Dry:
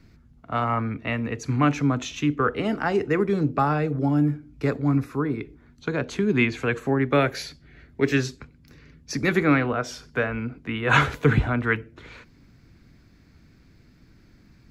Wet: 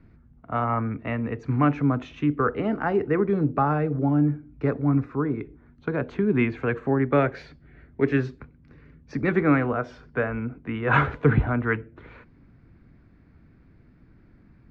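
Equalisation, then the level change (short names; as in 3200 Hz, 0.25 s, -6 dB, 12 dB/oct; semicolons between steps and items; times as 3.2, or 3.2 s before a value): LPF 1700 Hz 12 dB/oct; 0.0 dB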